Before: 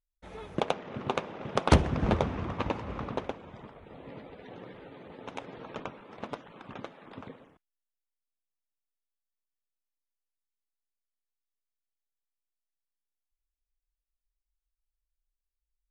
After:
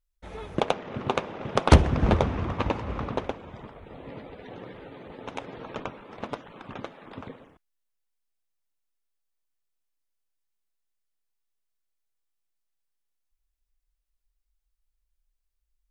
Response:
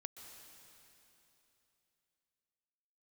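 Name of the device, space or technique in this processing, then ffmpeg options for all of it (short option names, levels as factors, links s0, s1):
low shelf boost with a cut just above: -af "lowshelf=f=85:g=6,equalizer=f=170:t=o:w=0.77:g=-2,volume=1.58"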